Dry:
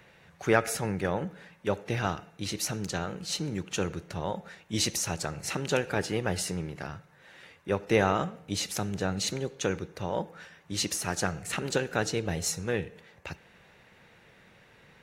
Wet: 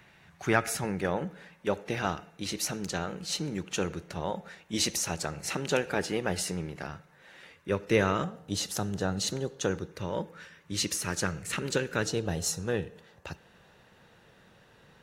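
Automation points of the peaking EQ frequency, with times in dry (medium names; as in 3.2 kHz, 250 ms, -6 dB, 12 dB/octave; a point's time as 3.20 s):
peaking EQ -11 dB 0.32 oct
500 Hz
from 0.84 s 110 Hz
from 7.54 s 770 Hz
from 8.24 s 2.3 kHz
from 9.91 s 740 Hz
from 12.08 s 2.2 kHz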